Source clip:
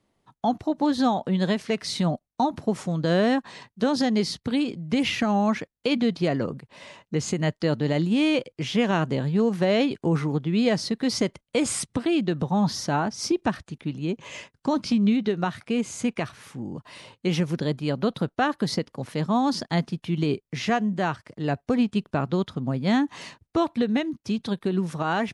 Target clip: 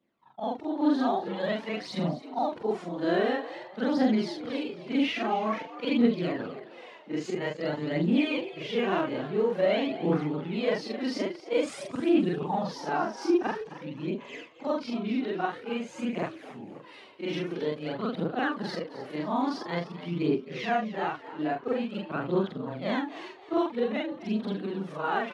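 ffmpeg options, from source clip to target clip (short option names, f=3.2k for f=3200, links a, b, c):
-filter_complex "[0:a]afftfilt=real='re':imag='-im':win_size=4096:overlap=0.75,acrossover=split=180 3900:gain=0.0794 1 0.141[a][b][c];[a][b][c]amix=inputs=3:normalize=0,aphaser=in_gain=1:out_gain=1:delay=3.4:decay=0.52:speed=0.49:type=triangular,asplit=5[d][e][f][g][h];[e]adelay=264,afreqshift=88,volume=-15dB[i];[f]adelay=528,afreqshift=176,volume=-23.2dB[j];[g]adelay=792,afreqshift=264,volume=-31.4dB[k];[h]adelay=1056,afreqshift=352,volume=-39.5dB[l];[d][i][j][k][l]amix=inputs=5:normalize=0"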